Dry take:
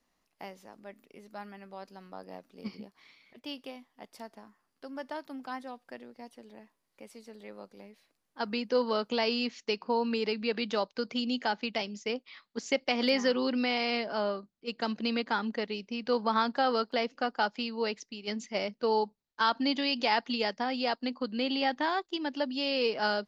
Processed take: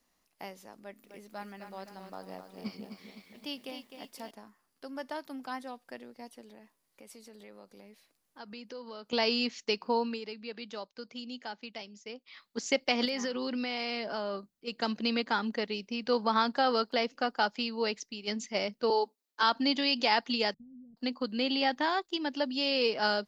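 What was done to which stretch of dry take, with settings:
0.78–4.31 lo-fi delay 0.257 s, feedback 55%, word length 11-bit, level -8 dB
6.41–9.13 compressor 2.5:1, threshold -49 dBFS
9.97–12.43 dip -11 dB, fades 0.24 s
13.05–14.74 compressor, threshold -30 dBFS
18.9–19.43 Chebyshev high-pass 250 Hz, order 5
20.54–20.97 inverse Chebyshev low-pass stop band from 1000 Hz, stop band 80 dB
whole clip: high shelf 5800 Hz +8 dB

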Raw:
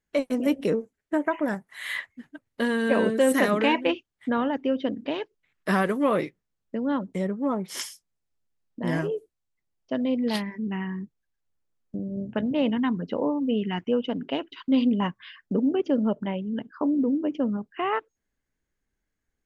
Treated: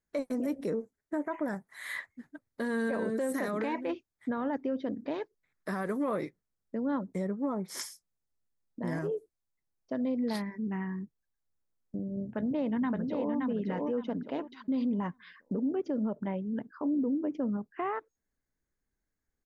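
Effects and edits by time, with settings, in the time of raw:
12.24–13.33 echo throw 0.57 s, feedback 25%, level -3.5 dB
whole clip: bell 2900 Hz -15 dB 0.42 oct; limiter -20 dBFS; gain -4 dB

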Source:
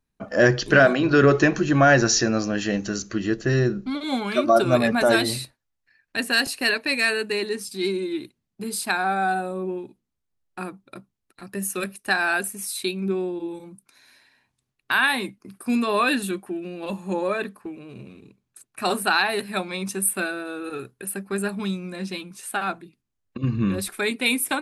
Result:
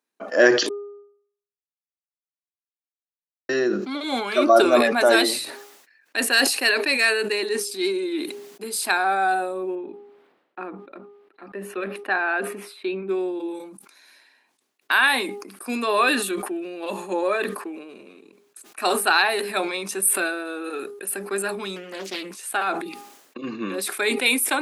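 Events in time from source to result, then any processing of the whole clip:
0.69–3.49 mute
9.75–13.09 air absorption 480 m
21.76–22.46 Doppler distortion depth 0.74 ms
whole clip: HPF 300 Hz 24 dB/oct; de-hum 407.3 Hz, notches 3; sustainer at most 60 dB/s; gain +2 dB

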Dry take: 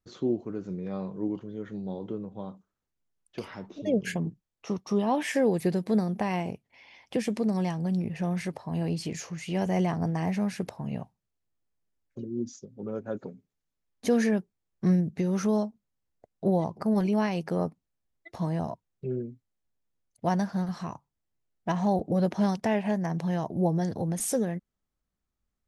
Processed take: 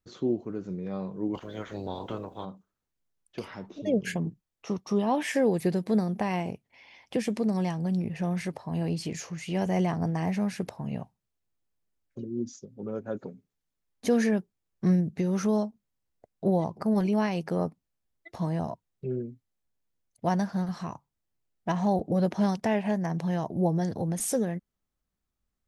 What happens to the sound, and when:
1.33–2.44 spectral limiter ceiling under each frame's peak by 23 dB

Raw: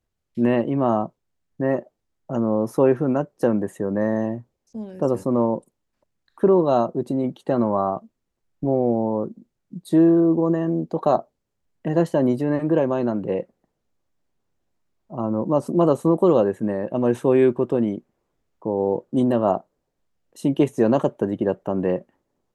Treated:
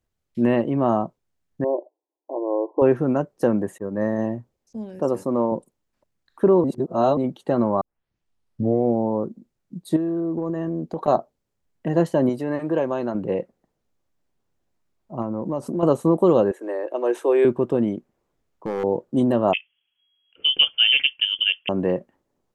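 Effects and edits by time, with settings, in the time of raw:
1.64–2.82 brick-wall FIR band-pass 280–1100 Hz
3.78–4.19 expander -20 dBFS
4.99–5.52 HPF 230 Hz 6 dB/oct
6.64–7.17 reverse
7.81 tape start 1.04 s
9.96–11.08 compressor, threshold -22 dBFS
12.29–13.15 low shelf 320 Hz -8 dB
15.22–15.83 compressor 3:1, threshold -23 dBFS
16.51–17.45 steep high-pass 320 Hz 48 dB/oct
17.97–18.84 overloaded stage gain 21.5 dB
19.53–21.69 inverted band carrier 3300 Hz

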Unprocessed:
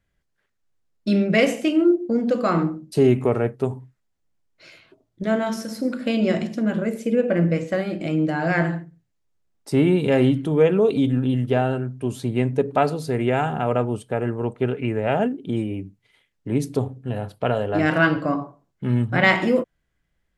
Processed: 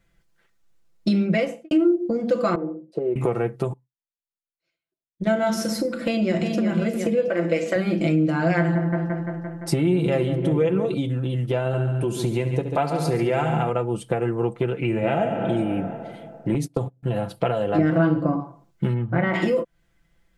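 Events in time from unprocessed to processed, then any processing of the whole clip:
1.21–1.71 studio fade out
2.55–3.16 band-pass 500 Hz, Q 3.5
3.73–5.3 upward expander 2.5:1, over -51 dBFS
6.06–6.62 echo throw 0.36 s, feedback 60%, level -8.5 dB
7.28–7.76 HPF 420 Hz
8.58–10.94 dark delay 0.172 s, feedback 70%, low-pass 1600 Hz, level -10 dB
11.59–13.7 multi-head echo 70 ms, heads first and second, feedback 47%, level -12 dB
14.85–15.48 reverb throw, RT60 2.2 s, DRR 2.5 dB
16.54–17.03 gate -30 dBFS, range -26 dB
17.78–18.4 tilt shelf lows +8 dB, about 1300 Hz
18.93–19.33 LPF 2400 Hz -> 1100 Hz
whole clip: compressor 6:1, threshold -27 dBFS; notch 1700 Hz, Q 28; comb 5.9 ms, depth 69%; gain +6.5 dB

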